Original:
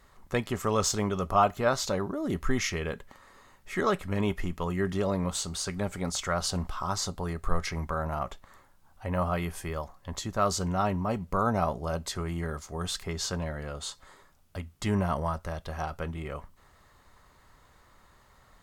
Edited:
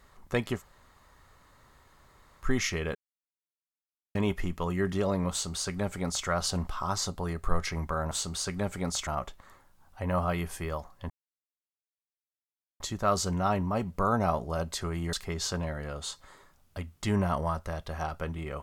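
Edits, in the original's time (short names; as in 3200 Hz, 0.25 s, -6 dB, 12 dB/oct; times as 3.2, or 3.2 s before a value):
0.58–2.44 room tone, crossfade 0.10 s
2.95–4.15 mute
5.31–6.27 copy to 8.11
10.14 insert silence 1.70 s
12.47–12.92 cut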